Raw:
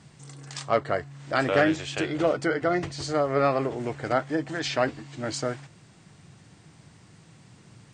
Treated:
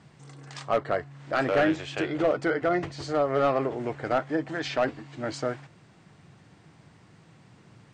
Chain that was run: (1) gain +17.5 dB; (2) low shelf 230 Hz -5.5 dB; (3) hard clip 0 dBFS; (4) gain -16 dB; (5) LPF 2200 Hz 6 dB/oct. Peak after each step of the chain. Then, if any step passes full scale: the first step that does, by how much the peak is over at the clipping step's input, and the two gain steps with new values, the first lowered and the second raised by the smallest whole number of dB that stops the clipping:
+10.0, +9.5, 0.0, -16.0, -16.0 dBFS; step 1, 9.5 dB; step 1 +7.5 dB, step 4 -6 dB

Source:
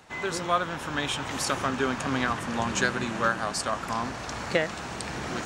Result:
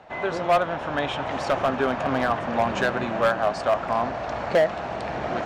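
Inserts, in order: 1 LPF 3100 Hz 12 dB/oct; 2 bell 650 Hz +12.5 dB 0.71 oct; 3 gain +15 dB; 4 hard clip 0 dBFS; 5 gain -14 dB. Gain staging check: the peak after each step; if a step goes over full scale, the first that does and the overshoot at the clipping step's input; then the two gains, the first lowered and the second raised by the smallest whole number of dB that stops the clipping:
-9.5, -6.0, +9.0, 0.0, -14.0 dBFS; step 3, 9.0 dB; step 3 +6 dB, step 5 -5 dB

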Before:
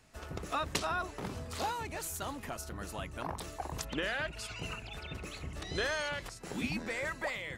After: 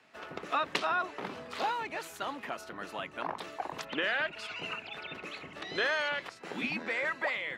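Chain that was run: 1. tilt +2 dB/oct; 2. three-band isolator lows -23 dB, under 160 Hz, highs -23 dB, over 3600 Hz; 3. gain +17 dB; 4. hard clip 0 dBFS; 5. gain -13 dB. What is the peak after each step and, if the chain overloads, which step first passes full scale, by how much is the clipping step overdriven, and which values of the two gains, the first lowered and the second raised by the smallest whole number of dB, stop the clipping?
-14.0, -19.0, -2.0, -2.0, -15.0 dBFS; no overload

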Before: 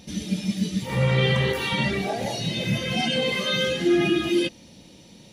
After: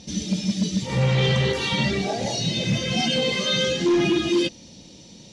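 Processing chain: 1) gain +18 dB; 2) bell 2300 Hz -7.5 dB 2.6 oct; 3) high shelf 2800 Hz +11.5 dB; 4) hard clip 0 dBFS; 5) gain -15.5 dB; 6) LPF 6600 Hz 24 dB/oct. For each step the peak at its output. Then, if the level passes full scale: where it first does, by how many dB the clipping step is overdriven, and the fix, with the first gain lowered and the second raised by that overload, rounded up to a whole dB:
+8.5, +6.5, +7.5, 0.0, -15.5, -14.0 dBFS; step 1, 7.5 dB; step 1 +10 dB, step 5 -7.5 dB

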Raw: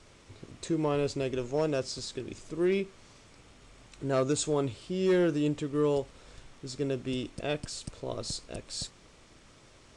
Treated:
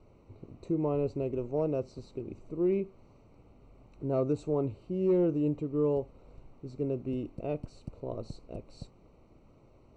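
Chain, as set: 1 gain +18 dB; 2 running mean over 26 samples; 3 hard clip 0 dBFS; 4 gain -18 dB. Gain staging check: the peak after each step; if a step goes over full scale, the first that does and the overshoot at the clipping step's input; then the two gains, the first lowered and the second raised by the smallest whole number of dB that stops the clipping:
-2.0, -2.0, -2.0, -20.0 dBFS; no overload

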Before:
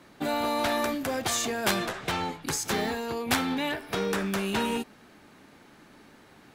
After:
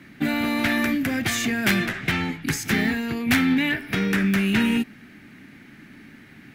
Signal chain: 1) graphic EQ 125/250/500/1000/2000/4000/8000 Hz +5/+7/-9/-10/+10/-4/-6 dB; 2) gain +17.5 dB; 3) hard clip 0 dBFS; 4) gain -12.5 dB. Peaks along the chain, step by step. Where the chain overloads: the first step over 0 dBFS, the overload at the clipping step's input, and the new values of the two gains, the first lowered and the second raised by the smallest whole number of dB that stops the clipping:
-10.0, +7.5, 0.0, -12.5 dBFS; step 2, 7.5 dB; step 2 +9.5 dB, step 4 -4.5 dB

